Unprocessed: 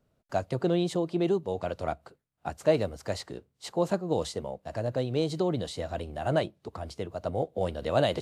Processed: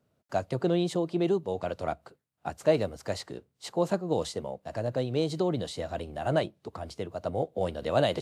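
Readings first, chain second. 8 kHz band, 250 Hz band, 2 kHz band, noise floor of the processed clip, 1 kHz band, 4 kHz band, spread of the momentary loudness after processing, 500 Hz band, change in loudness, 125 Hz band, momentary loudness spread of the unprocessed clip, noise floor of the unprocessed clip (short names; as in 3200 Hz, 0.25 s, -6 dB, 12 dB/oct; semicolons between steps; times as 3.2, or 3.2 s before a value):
0.0 dB, 0.0 dB, 0.0 dB, -76 dBFS, 0.0 dB, 0.0 dB, 11 LU, 0.0 dB, 0.0 dB, -0.5 dB, 11 LU, -75 dBFS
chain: HPF 82 Hz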